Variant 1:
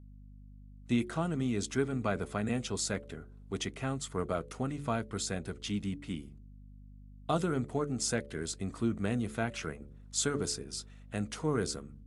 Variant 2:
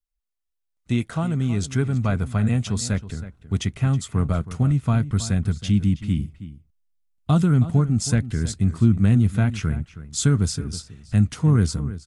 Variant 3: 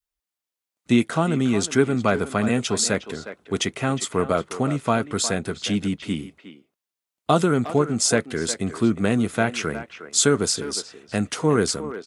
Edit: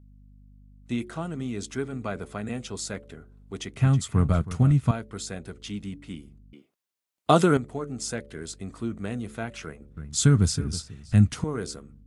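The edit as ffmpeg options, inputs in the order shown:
-filter_complex "[1:a]asplit=2[s0][s1];[0:a]asplit=4[s2][s3][s4][s5];[s2]atrim=end=3.772[s6];[s0]atrim=start=3.768:end=4.912[s7];[s3]atrim=start=4.908:end=6.532[s8];[2:a]atrim=start=6.528:end=7.572[s9];[s4]atrim=start=7.568:end=9.972[s10];[s1]atrim=start=9.968:end=11.442[s11];[s5]atrim=start=11.438[s12];[s6][s7]acrossfade=d=0.004:c1=hsin:c2=hsin[s13];[s13][s8]acrossfade=d=0.004:c1=hsin:c2=hsin[s14];[s14][s9]acrossfade=d=0.004:c1=hsin:c2=hsin[s15];[s15][s10]acrossfade=d=0.004:c1=hsin:c2=hsin[s16];[s16][s11]acrossfade=d=0.004:c1=hsin:c2=hsin[s17];[s17][s12]acrossfade=d=0.004:c1=hsin:c2=hsin"

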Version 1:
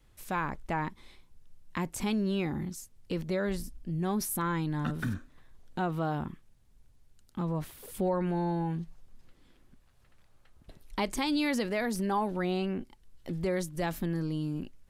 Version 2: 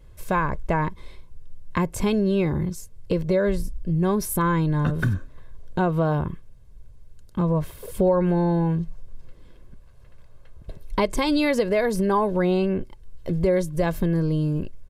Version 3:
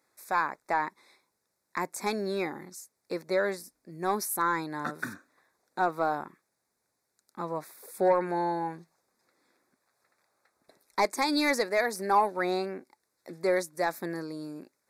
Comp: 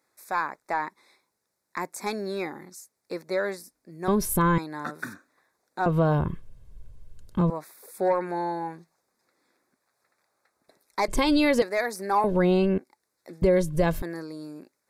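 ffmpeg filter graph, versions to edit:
-filter_complex "[1:a]asplit=5[s0][s1][s2][s3][s4];[2:a]asplit=6[s5][s6][s7][s8][s9][s10];[s5]atrim=end=4.082[s11];[s0]atrim=start=4.078:end=4.582[s12];[s6]atrim=start=4.578:end=5.862[s13];[s1]atrim=start=5.858:end=7.502[s14];[s7]atrim=start=7.498:end=11.082[s15];[s2]atrim=start=11.078:end=11.622[s16];[s8]atrim=start=11.618:end=12.242[s17];[s3]atrim=start=12.238:end=12.782[s18];[s9]atrim=start=12.778:end=13.422[s19];[s4]atrim=start=13.418:end=14.022[s20];[s10]atrim=start=14.018[s21];[s11][s12]acrossfade=d=0.004:c1=hsin:c2=hsin[s22];[s22][s13]acrossfade=d=0.004:c1=hsin:c2=hsin[s23];[s23][s14]acrossfade=d=0.004:c1=hsin:c2=hsin[s24];[s24][s15]acrossfade=d=0.004:c1=hsin:c2=hsin[s25];[s25][s16]acrossfade=d=0.004:c1=hsin:c2=hsin[s26];[s26][s17]acrossfade=d=0.004:c1=hsin:c2=hsin[s27];[s27][s18]acrossfade=d=0.004:c1=hsin:c2=hsin[s28];[s28][s19]acrossfade=d=0.004:c1=hsin:c2=hsin[s29];[s29][s20]acrossfade=d=0.004:c1=hsin:c2=hsin[s30];[s30][s21]acrossfade=d=0.004:c1=hsin:c2=hsin"

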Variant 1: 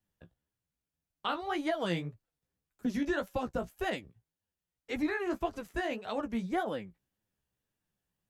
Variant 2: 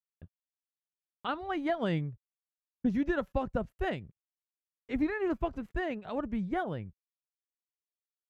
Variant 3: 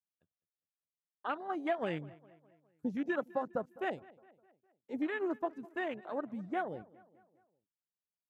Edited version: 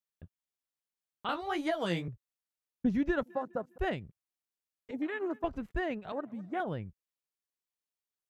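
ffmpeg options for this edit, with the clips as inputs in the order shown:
-filter_complex "[2:a]asplit=3[s0][s1][s2];[1:a]asplit=5[s3][s4][s5][s6][s7];[s3]atrim=end=1.292[s8];[0:a]atrim=start=1.288:end=2.082[s9];[s4]atrim=start=2.078:end=3.232[s10];[s0]atrim=start=3.228:end=3.782[s11];[s5]atrim=start=3.778:end=4.912[s12];[s1]atrim=start=4.908:end=5.442[s13];[s6]atrim=start=5.438:end=6.122[s14];[s2]atrim=start=6.118:end=6.602[s15];[s7]atrim=start=6.598[s16];[s8][s9]acrossfade=d=0.004:c1=hsin:c2=hsin[s17];[s17][s10]acrossfade=d=0.004:c1=hsin:c2=hsin[s18];[s18][s11]acrossfade=d=0.004:c1=hsin:c2=hsin[s19];[s19][s12]acrossfade=d=0.004:c1=hsin:c2=hsin[s20];[s20][s13]acrossfade=d=0.004:c1=hsin:c2=hsin[s21];[s21][s14]acrossfade=d=0.004:c1=hsin:c2=hsin[s22];[s22][s15]acrossfade=d=0.004:c1=hsin:c2=hsin[s23];[s23][s16]acrossfade=d=0.004:c1=hsin:c2=hsin"

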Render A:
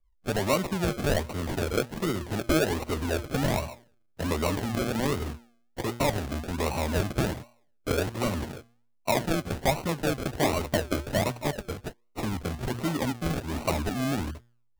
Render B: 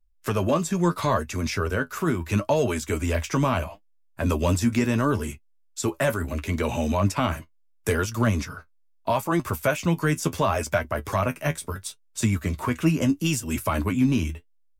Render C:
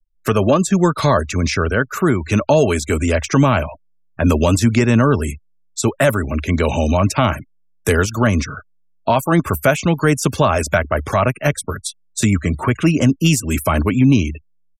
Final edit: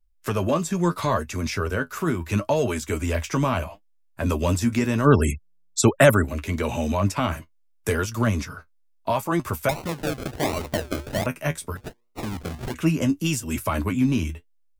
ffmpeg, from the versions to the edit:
-filter_complex "[0:a]asplit=2[s0][s1];[1:a]asplit=4[s2][s3][s4][s5];[s2]atrim=end=5.08[s6];[2:a]atrim=start=5.04:end=6.26[s7];[s3]atrim=start=6.22:end=9.692[s8];[s0]atrim=start=9.688:end=11.262[s9];[s4]atrim=start=11.258:end=11.772[s10];[s1]atrim=start=11.768:end=12.742[s11];[s5]atrim=start=12.738[s12];[s6][s7]acrossfade=d=0.04:c1=tri:c2=tri[s13];[s13][s8]acrossfade=d=0.04:c1=tri:c2=tri[s14];[s14][s9]acrossfade=d=0.004:c1=hsin:c2=hsin[s15];[s15][s10]acrossfade=d=0.004:c1=hsin:c2=hsin[s16];[s16][s11]acrossfade=d=0.004:c1=hsin:c2=hsin[s17];[s17][s12]acrossfade=d=0.004:c1=hsin:c2=hsin"

